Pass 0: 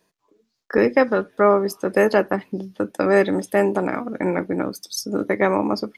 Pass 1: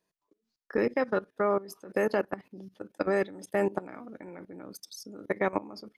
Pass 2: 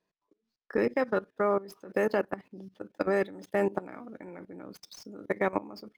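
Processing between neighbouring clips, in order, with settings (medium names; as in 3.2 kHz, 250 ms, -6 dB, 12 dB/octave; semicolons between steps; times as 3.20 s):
level held to a coarse grid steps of 19 dB; trim -6 dB
median filter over 5 samples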